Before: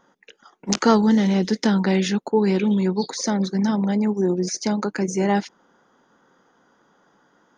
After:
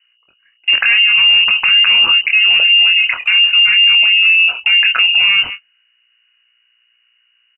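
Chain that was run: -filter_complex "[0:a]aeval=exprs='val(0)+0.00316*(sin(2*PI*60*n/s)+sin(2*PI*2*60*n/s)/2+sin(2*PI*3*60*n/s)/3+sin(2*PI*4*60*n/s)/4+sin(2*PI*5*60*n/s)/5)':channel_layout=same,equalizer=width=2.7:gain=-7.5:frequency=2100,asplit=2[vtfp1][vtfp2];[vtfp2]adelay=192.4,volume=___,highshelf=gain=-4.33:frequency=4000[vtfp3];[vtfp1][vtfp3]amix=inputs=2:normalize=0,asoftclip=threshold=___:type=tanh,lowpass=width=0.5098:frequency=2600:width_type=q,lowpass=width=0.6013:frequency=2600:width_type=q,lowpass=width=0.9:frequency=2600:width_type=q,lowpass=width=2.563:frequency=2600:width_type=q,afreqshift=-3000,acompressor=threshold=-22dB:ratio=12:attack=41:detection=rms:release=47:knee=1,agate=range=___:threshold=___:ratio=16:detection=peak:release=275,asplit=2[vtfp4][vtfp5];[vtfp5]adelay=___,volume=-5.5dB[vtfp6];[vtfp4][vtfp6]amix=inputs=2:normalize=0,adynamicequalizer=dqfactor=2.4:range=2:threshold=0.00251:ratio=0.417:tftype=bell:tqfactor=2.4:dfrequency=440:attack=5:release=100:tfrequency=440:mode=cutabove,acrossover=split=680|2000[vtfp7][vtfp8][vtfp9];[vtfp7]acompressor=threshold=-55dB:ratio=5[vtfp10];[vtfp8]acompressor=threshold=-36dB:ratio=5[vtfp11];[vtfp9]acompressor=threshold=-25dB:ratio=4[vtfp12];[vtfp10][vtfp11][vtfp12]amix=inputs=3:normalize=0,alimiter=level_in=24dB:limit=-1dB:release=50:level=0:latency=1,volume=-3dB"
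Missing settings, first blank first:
-29dB, -10dB, -28dB, -37dB, 25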